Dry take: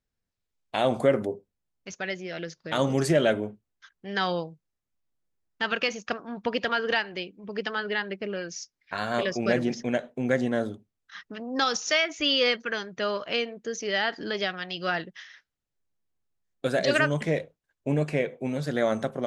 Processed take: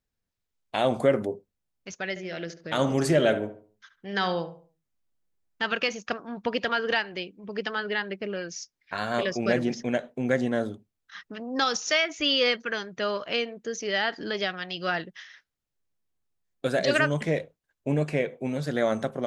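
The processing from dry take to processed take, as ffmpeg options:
ffmpeg -i in.wav -filter_complex "[0:a]asettb=1/sr,asplit=3[link_01][link_02][link_03];[link_01]atrim=end=2.094[link_04];[link_02]atrim=start=2.09:end=5.62,asetpts=PTS-STARTPTS,afade=type=in:duration=0.004:curve=qsin,afade=type=out:start_time=3.526:duration=0.004:curve=qsin,asplit=2[link_05][link_06];[link_06]adelay=70,lowpass=frequency=2000:poles=1,volume=-10.5dB,asplit=2[link_07][link_08];[link_08]adelay=70,lowpass=frequency=2000:poles=1,volume=0.38,asplit=2[link_09][link_10];[link_10]adelay=70,lowpass=frequency=2000:poles=1,volume=0.38,asplit=2[link_11][link_12];[link_12]adelay=70,lowpass=frequency=2000:poles=1,volume=0.38[link_13];[link_05][link_07][link_09][link_11][link_13]amix=inputs=5:normalize=0,atrim=end_sample=155673[link_14];[link_03]atrim=start=5.616[link_15];[link_04][link_14]acrossfade=duration=0.004:curve1=hsin:curve2=qsin[link_16];[link_16][link_15]acrossfade=duration=0.004:curve1=qsin:curve2=hsin" out.wav

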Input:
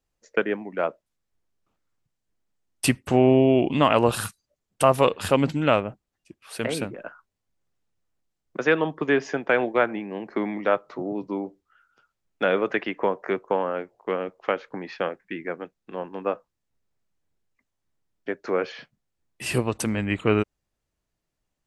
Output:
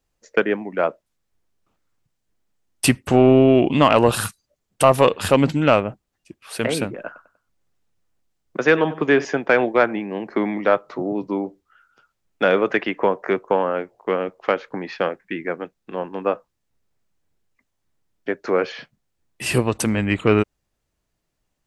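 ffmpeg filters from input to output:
ffmpeg -i in.wav -filter_complex "[0:a]asettb=1/sr,asplit=3[link_01][link_02][link_03];[link_01]atrim=end=7.064[link_04];[link_02]atrim=start=7.06:end=9.25,asetpts=PTS-STARTPTS,afade=type=in:duration=0.004:curve=qsin,afade=type=out:start_time=2.186:duration=0.004:curve=qsin,asplit=2[link_05][link_06];[link_06]adelay=96,lowpass=frequency=4700:poles=1,volume=-16.5dB,asplit=2[link_07][link_08];[link_08]adelay=96,lowpass=frequency=4700:poles=1,volume=0.38,asplit=2[link_09][link_10];[link_10]adelay=96,lowpass=frequency=4700:poles=1,volume=0.38[link_11];[link_05][link_07][link_09][link_11]amix=inputs=4:normalize=0,atrim=end_sample=96579[link_12];[link_03]atrim=start=9.246[link_13];[link_04][link_12]acrossfade=duration=0.004:curve1=hsin:curve2=qsin[link_14];[link_14][link_13]acrossfade=duration=0.004:curve1=qsin:curve2=hsin,acontrast=31" out.wav

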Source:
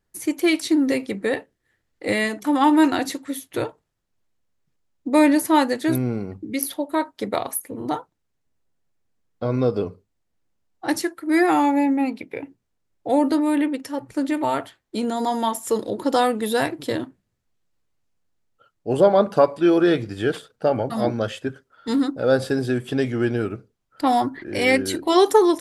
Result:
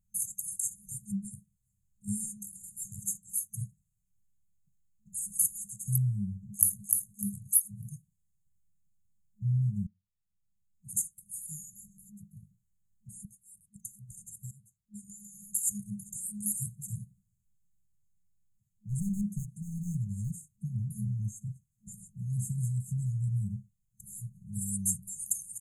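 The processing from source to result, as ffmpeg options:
ffmpeg -i in.wav -filter_complex "[0:a]asplit=2[link_01][link_02];[link_02]afade=type=in:start_time=6.31:duration=0.01,afade=type=out:start_time=6.83:duration=0.01,aecho=0:1:300|600|900|1200:0.668344|0.167086|0.0417715|0.0104429[link_03];[link_01][link_03]amix=inputs=2:normalize=0,asettb=1/sr,asplit=3[link_04][link_05][link_06];[link_04]atrim=end=16.974[link_07];[link_05]atrim=start=16.97:end=20.5,asetpts=PTS-STARTPTS,afade=type=in:duration=0.004:curve=qsin,afade=type=out:start_time=3.526:duration=0.004:curve=qsin,volume=18dB,asoftclip=hard,volume=-18dB[link_08];[link_06]atrim=start=20.496[link_09];[link_07][link_08]acrossfade=duration=0.004:curve1=hsin:curve2=qsin[link_10];[link_10][link_09]acrossfade=duration=0.004:curve1=qsin:curve2=hsin,asplit=5[link_11][link_12][link_13][link_14][link_15];[link_11]atrim=end=9.87,asetpts=PTS-STARTPTS,afade=type=out:start_time=9.866:duration=0.004:curve=hsin[link_16];[link_12]atrim=start=9.87:end=13.252,asetpts=PTS-STARTPTS,afade=type=in:duration=1.14[link_17];[link_13]atrim=start=13.248:end=13.762,asetpts=PTS-STARTPTS,volume=-11.5dB[link_18];[link_14]atrim=start=13.758:end=14.51,asetpts=PTS-STARTPTS,afade=type=out:start_time=0.748:duration=0.004:curve=hsin:silence=0.125893[link_19];[link_15]atrim=start=14.51,asetpts=PTS-STARTPTS,afade=type=in:duration=0.98:silence=0.125893[link_20];[link_16][link_17]concat=n=2:v=0:a=1[link_21];[link_21][link_18]acrossfade=duration=0.004:curve1=hsin:curve2=hsin[link_22];[link_19][link_20]concat=n=2:v=0:a=1[link_23];[link_22][link_23]acrossfade=duration=0.004:curve1=hsin:curve2=hsin,afftfilt=real='re*(1-between(b*sr/4096,210,6300))':imag='im*(1-between(b*sr/4096,210,6300))':win_size=4096:overlap=0.75,adynamicequalizer=threshold=0.00447:dfrequency=9200:dqfactor=1.3:tfrequency=9200:tqfactor=1.3:attack=5:release=100:ratio=0.375:range=3:mode=boostabove:tftype=bell" out.wav

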